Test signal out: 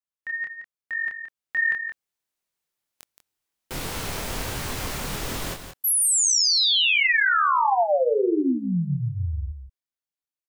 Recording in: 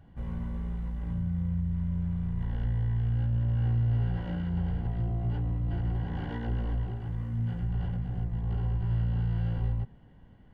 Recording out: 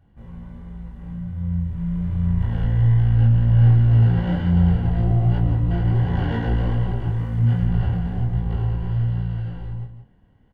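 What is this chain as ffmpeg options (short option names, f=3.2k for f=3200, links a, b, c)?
-filter_complex "[0:a]dynaudnorm=f=120:g=31:m=14dB,flanger=delay=22.5:depth=6.5:speed=1.3,asplit=2[a][b];[b]aecho=0:1:172:0.355[c];[a][c]amix=inputs=2:normalize=0"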